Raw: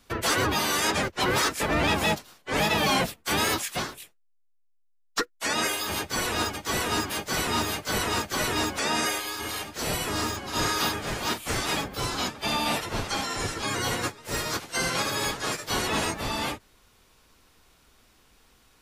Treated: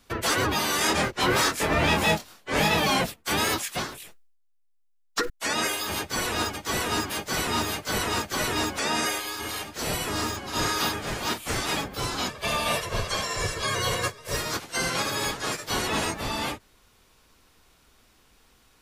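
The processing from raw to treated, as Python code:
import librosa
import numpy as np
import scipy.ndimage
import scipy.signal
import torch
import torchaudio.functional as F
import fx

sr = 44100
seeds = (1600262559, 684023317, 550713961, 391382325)

y = fx.doubler(x, sr, ms=25.0, db=-3.5, at=(0.78, 2.8))
y = fx.sustainer(y, sr, db_per_s=60.0, at=(3.88, 5.3))
y = fx.comb(y, sr, ms=1.8, depth=0.65, at=(12.29, 14.37))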